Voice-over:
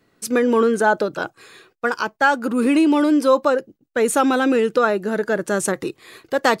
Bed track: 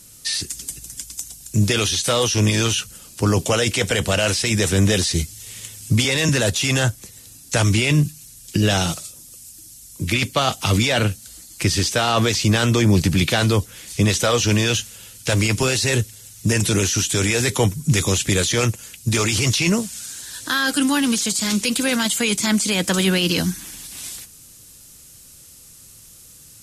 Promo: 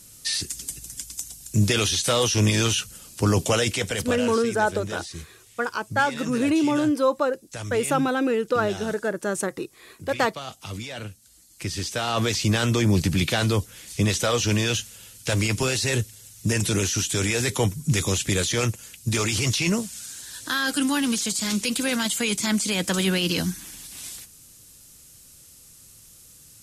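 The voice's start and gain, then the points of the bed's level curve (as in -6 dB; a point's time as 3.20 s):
3.75 s, -5.5 dB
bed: 3.57 s -2.5 dB
4.56 s -16.5 dB
11.12 s -16.5 dB
12.32 s -4.5 dB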